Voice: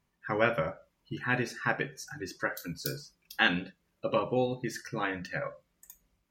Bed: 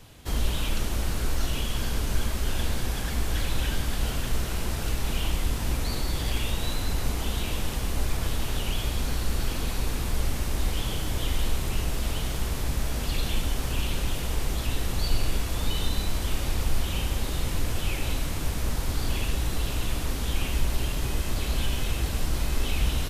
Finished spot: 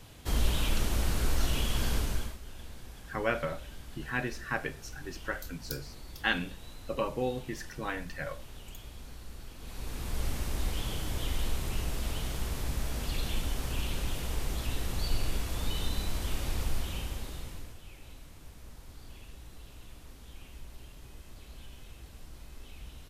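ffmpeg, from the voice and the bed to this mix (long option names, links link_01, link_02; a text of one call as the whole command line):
ffmpeg -i stem1.wav -i stem2.wav -filter_complex "[0:a]adelay=2850,volume=-3.5dB[link_01];[1:a]volume=11.5dB,afade=type=out:start_time=1.94:duration=0.44:silence=0.141254,afade=type=in:start_time=9.58:duration=0.7:silence=0.223872,afade=type=out:start_time=16.61:duration=1.17:silence=0.158489[link_02];[link_01][link_02]amix=inputs=2:normalize=0" out.wav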